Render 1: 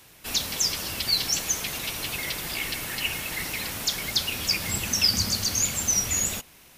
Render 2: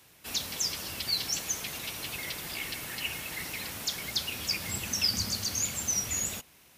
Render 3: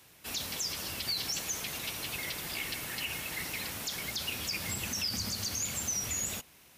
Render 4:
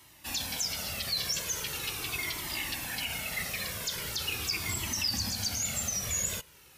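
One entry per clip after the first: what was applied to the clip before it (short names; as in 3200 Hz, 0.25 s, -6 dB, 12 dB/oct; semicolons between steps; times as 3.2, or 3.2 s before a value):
HPF 52 Hz; gain -6 dB
limiter -24.5 dBFS, peak gain reduction 8.5 dB
cascading flanger falling 0.41 Hz; gain +6.5 dB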